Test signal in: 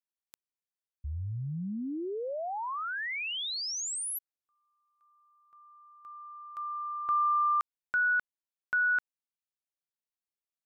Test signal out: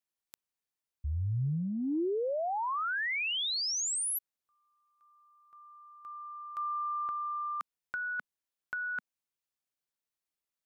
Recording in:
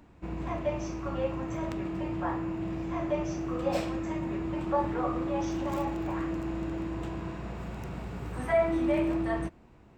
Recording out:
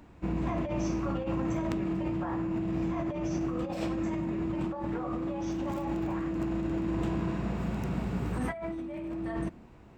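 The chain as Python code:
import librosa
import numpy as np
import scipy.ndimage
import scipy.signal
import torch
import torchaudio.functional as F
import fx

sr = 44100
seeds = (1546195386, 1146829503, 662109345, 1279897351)

y = fx.dynamic_eq(x, sr, hz=210.0, q=1.3, threshold_db=-49.0, ratio=8.0, max_db=7)
y = fx.over_compress(y, sr, threshold_db=-32.0, ratio=-1.0)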